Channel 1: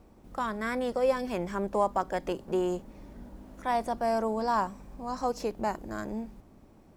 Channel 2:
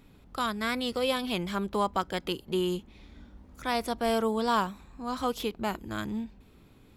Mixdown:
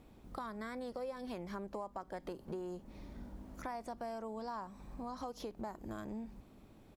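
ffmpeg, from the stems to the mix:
-filter_complex "[0:a]volume=0.562,asplit=2[s0][s1];[1:a]adelay=0.3,volume=0.398[s2];[s1]apad=whole_len=311455[s3];[s2][s3]sidechaincompress=threshold=0.01:ratio=8:attack=16:release=170[s4];[s0][s4]amix=inputs=2:normalize=0,acompressor=threshold=0.01:ratio=6"

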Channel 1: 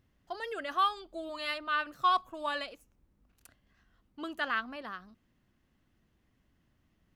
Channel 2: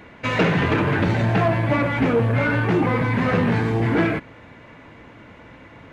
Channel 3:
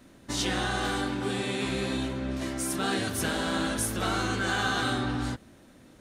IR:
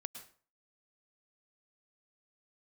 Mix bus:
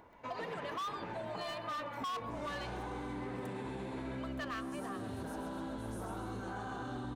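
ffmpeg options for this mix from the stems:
-filter_complex "[0:a]aecho=1:1:1.7:0.68,volume=0.531,asplit=2[s0][s1];[s1]volume=0.562[s2];[1:a]highpass=f=1000:p=1,acompressor=mode=upward:threshold=0.00794:ratio=2.5,volume=0.282,asplit=3[s3][s4][s5];[s4]volume=0.422[s6];[s5]volume=0.224[s7];[2:a]alimiter=level_in=1.12:limit=0.0631:level=0:latency=1,volume=0.891,adelay=2000,volume=1.41,asplit=3[s8][s9][s10];[s9]volume=0.0794[s11];[s10]volume=0.106[s12];[s3][s8]amix=inputs=2:normalize=0,lowpass=1000,alimiter=level_in=2.37:limit=0.0631:level=0:latency=1,volume=0.422,volume=1[s13];[3:a]atrim=start_sample=2205[s14];[s2][s6][s11]amix=inputs=3:normalize=0[s15];[s15][s14]afir=irnorm=-1:irlink=0[s16];[s7][s12]amix=inputs=2:normalize=0,aecho=0:1:130|260|390|520|650|780|910|1040:1|0.55|0.303|0.166|0.0915|0.0503|0.0277|0.0152[s17];[s0][s13][s16][s17]amix=inputs=4:normalize=0,equalizer=f=930:t=o:w=0.26:g=8,asoftclip=type=hard:threshold=0.0376,acompressor=threshold=0.0126:ratio=6"

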